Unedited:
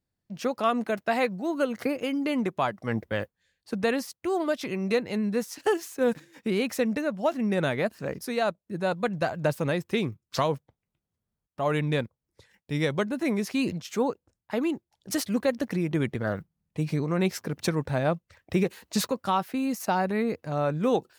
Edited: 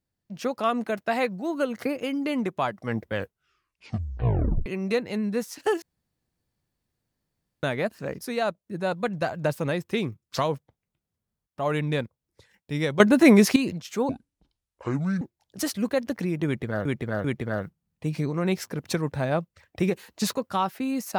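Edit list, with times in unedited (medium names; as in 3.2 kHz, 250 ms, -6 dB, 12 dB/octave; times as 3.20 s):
3.14 s: tape stop 1.52 s
5.82–7.63 s: room tone
13.00–13.56 s: gain +12 dB
14.09–14.73 s: speed 57%
15.98–16.37 s: loop, 3 plays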